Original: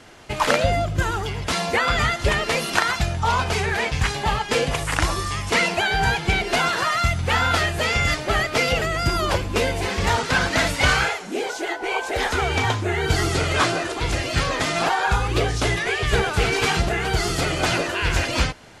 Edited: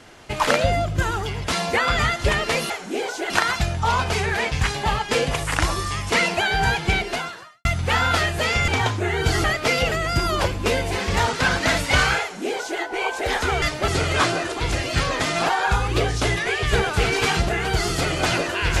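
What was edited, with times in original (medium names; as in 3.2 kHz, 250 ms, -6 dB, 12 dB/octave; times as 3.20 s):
6.37–7.05 s: fade out quadratic
8.08–8.34 s: swap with 12.52–13.28 s
11.11–11.71 s: copy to 2.70 s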